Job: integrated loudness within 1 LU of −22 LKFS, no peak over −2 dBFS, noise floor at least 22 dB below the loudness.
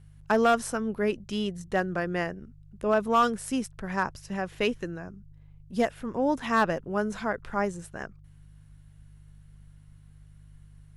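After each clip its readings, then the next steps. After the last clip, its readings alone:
share of clipped samples 0.3%; peaks flattened at −15.0 dBFS; mains hum 50 Hz; hum harmonics up to 150 Hz; level of the hum −50 dBFS; integrated loudness −28.5 LKFS; sample peak −15.0 dBFS; target loudness −22.0 LKFS
→ clipped peaks rebuilt −15 dBFS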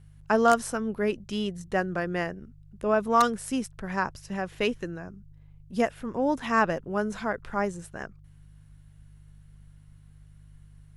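share of clipped samples 0.0%; mains hum 50 Hz; hum harmonics up to 150 Hz; level of the hum −50 dBFS
→ hum removal 50 Hz, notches 3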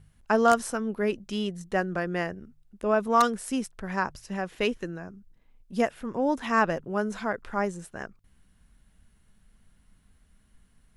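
mains hum none found; integrated loudness −28.0 LKFS; sample peak −6.0 dBFS; target loudness −22.0 LKFS
→ level +6 dB
brickwall limiter −2 dBFS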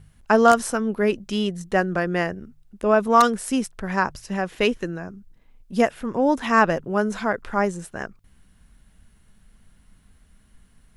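integrated loudness −22.0 LKFS; sample peak −2.0 dBFS; background noise floor −57 dBFS

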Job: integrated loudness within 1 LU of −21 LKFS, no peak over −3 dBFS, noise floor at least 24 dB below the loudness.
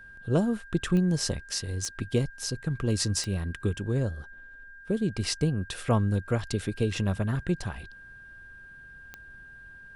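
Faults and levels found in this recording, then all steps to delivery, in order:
number of clicks 4; interfering tone 1,600 Hz; level of the tone −46 dBFS; integrated loudness −29.0 LKFS; sample peak −11.5 dBFS; target loudness −21.0 LKFS
→ click removal
notch filter 1,600 Hz, Q 30
level +8 dB

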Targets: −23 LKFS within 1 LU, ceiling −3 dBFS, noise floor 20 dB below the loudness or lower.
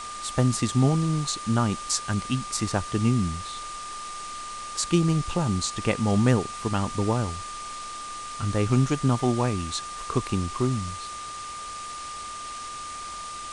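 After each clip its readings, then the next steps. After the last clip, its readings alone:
interfering tone 1,200 Hz; level of the tone −35 dBFS; background noise floor −37 dBFS; target noise floor −47 dBFS; integrated loudness −27.0 LKFS; sample peak −6.5 dBFS; target loudness −23.0 LKFS
→ notch filter 1,200 Hz, Q 30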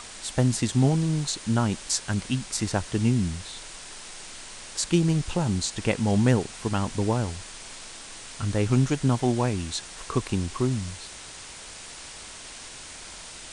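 interfering tone none found; background noise floor −42 dBFS; target noise floor −46 dBFS
→ noise reduction from a noise print 6 dB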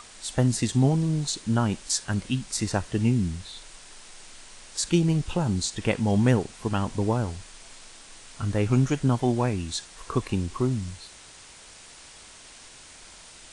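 background noise floor −48 dBFS; integrated loudness −26.0 LKFS; sample peak −6.5 dBFS; target loudness −23.0 LKFS
→ level +3 dB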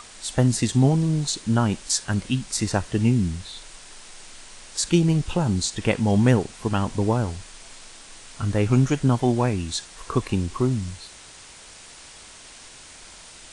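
integrated loudness −23.0 LKFS; sample peak −3.5 dBFS; background noise floor −45 dBFS

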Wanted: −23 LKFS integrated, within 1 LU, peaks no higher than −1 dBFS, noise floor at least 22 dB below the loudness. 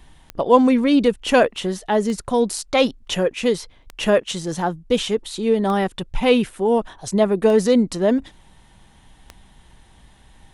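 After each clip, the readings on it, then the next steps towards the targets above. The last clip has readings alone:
number of clicks 6; integrated loudness −19.5 LKFS; sample peak −1.5 dBFS; target loudness −23.0 LKFS
→ click removal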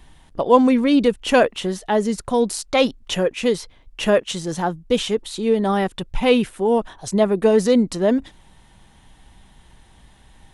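number of clicks 0; integrated loudness −19.5 LKFS; sample peak −1.5 dBFS; target loudness −23.0 LKFS
→ level −3.5 dB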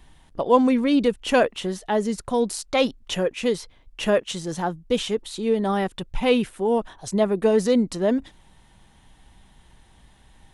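integrated loudness −23.0 LKFS; sample peak −5.0 dBFS; background noise floor −55 dBFS

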